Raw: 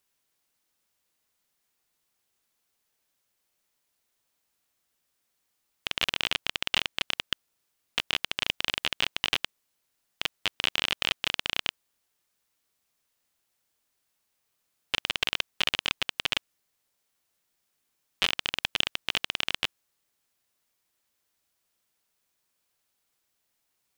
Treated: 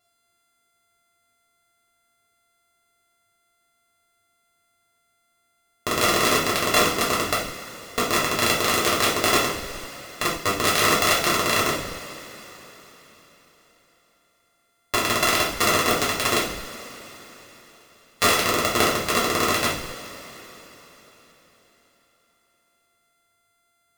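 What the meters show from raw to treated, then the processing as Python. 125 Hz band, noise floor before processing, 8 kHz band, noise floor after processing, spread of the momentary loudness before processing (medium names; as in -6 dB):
+15.5 dB, -78 dBFS, +17.5 dB, -69 dBFS, 7 LU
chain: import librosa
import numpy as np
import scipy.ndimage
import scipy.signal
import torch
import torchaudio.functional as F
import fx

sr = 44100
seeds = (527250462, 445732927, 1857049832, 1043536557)

p1 = np.r_[np.sort(x[:len(x) // 64 * 64].reshape(-1, 64), axis=1).ravel(), x[len(x) // 64 * 64:]]
p2 = fx.hpss(p1, sr, part='harmonic', gain_db=4)
p3 = fx.rev_double_slope(p2, sr, seeds[0], early_s=0.49, late_s=4.4, knee_db=-18, drr_db=-6.0)
p4 = fx.schmitt(p3, sr, flips_db=-26.5)
p5 = p3 + (p4 * 10.0 ** (-10.5 / 20.0))
y = p5 * 10.0 ** (1.0 / 20.0)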